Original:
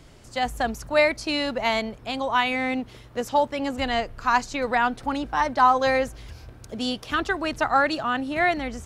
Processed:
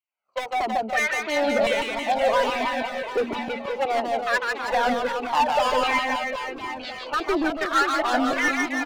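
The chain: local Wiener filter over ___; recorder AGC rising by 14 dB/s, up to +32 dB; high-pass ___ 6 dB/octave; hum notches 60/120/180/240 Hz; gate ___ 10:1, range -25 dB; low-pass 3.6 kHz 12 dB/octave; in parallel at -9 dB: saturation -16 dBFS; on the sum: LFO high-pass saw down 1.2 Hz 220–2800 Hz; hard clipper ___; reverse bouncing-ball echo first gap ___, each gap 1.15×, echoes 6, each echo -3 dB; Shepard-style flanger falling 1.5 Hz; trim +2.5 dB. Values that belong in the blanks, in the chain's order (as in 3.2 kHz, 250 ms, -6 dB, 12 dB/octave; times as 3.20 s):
25 samples, 46 Hz, -42 dBFS, -17.5 dBFS, 150 ms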